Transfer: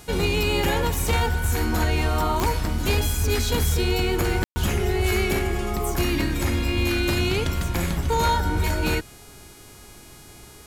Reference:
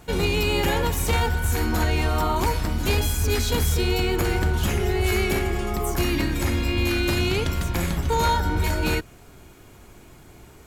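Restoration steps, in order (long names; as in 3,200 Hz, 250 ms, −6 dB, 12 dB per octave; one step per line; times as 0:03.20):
click removal
hum removal 414.8 Hz, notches 30
ambience match 0:04.44–0:04.56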